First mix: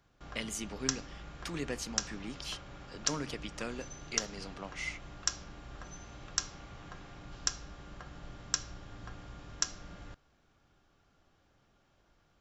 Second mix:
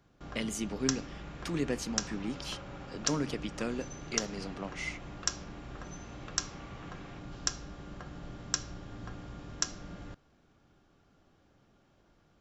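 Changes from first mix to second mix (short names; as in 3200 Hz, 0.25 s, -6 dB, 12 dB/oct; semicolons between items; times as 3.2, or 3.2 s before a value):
second sound +6.0 dB; master: add bell 240 Hz +7 dB 2.6 oct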